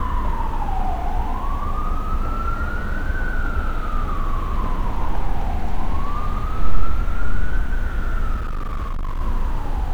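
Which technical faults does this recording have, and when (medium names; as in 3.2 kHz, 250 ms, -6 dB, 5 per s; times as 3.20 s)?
8.34–9.21 s: clipped -20.5 dBFS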